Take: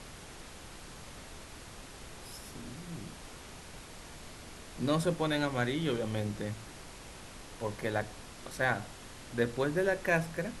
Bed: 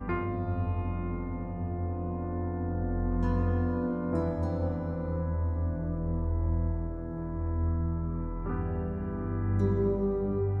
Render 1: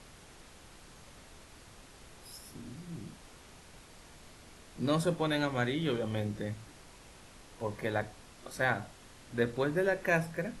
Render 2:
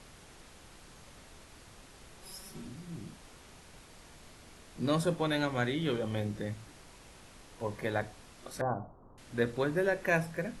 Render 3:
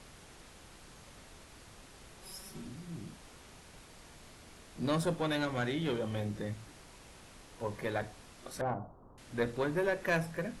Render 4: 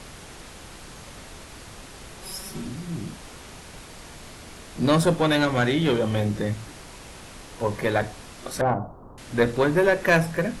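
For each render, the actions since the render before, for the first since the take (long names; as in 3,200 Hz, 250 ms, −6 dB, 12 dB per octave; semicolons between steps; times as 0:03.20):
noise reduction from a noise print 6 dB
0:02.22–0:02.67: comb filter 5.3 ms, depth 72%; 0:08.61–0:09.18: Butterworth low-pass 1,200 Hz 48 dB per octave
one-sided soft clipper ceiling −25 dBFS
level +12 dB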